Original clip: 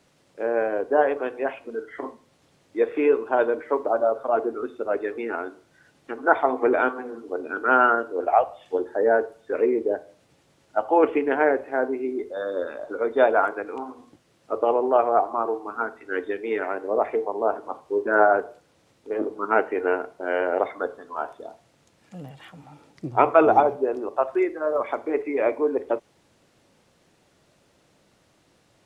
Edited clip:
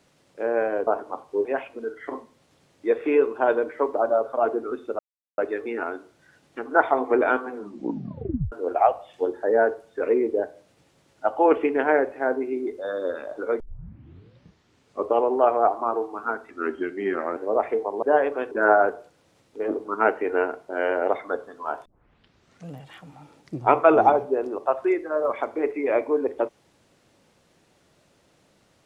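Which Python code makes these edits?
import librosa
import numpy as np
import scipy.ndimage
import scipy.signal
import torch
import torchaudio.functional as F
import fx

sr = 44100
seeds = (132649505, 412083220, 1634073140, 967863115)

y = fx.edit(x, sr, fx.swap(start_s=0.87, length_s=0.49, other_s=17.44, other_length_s=0.58),
    fx.insert_silence(at_s=4.9, length_s=0.39),
    fx.tape_stop(start_s=7.07, length_s=0.97),
    fx.tape_start(start_s=13.12, length_s=1.55),
    fx.speed_span(start_s=16.02, length_s=0.76, speed=0.88),
    fx.tape_start(start_s=21.36, length_s=0.85), tone=tone)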